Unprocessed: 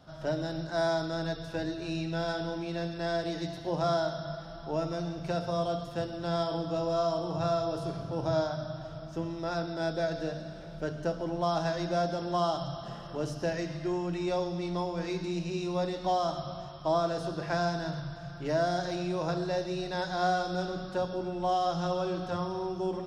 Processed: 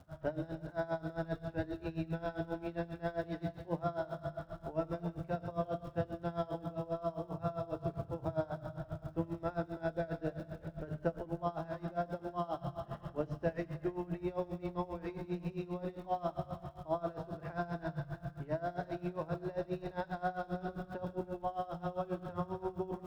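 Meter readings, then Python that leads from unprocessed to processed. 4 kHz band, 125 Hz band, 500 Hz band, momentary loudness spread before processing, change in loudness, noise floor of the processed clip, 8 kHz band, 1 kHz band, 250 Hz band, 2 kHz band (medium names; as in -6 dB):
-19.0 dB, -5.5 dB, -7.5 dB, 7 LU, -7.5 dB, -56 dBFS, under -20 dB, -8.5 dB, -6.5 dB, -9.0 dB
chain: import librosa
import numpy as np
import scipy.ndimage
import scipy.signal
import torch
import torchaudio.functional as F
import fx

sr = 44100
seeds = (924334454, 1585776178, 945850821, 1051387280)

p1 = scipy.signal.sosfilt(scipy.signal.butter(2, 2100.0, 'lowpass', fs=sr, output='sos'), x)
p2 = fx.peak_eq(p1, sr, hz=75.0, db=12.0, octaves=0.88)
p3 = fx.rider(p2, sr, range_db=3, speed_s=0.5)
p4 = fx.dmg_crackle(p3, sr, seeds[0], per_s=380.0, level_db=-51.0)
p5 = p4 + fx.echo_split(p4, sr, split_hz=330.0, low_ms=416, high_ms=316, feedback_pct=52, wet_db=-13.5, dry=0)
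p6 = p5 * 10.0 ** (-19 * (0.5 - 0.5 * np.cos(2.0 * np.pi * 7.5 * np.arange(len(p5)) / sr)) / 20.0)
y = p6 * 10.0 ** (-2.5 / 20.0)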